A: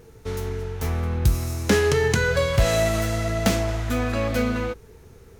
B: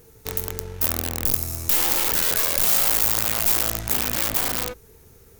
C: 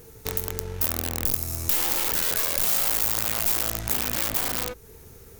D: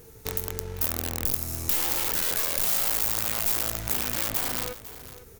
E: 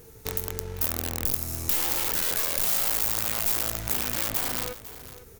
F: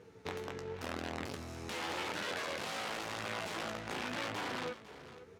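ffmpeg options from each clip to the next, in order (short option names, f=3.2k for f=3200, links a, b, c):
-af "aeval=exprs='(tanh(15.8*val(0)+0.55)-tanh(0.55))/15.8':c=same,aeval=exprs='(mod(12.6*val(0)+1,2)-1)/12.6':c=same,aemphasis=mode=production:type=50fm,volume=-1.5dB"
-af "acompressor=threshold=-34dB:ratio=1.5,volume=3.5dB"
-af "aecho=1:1:502:0.178,volume=-2dB"
-af anull
-af "flanger=delay=9.9:depth=4.5:regen=44:speed=0.91:shape=sinusoidal,highpass=150,lowpass=3.1k,volume=1dB"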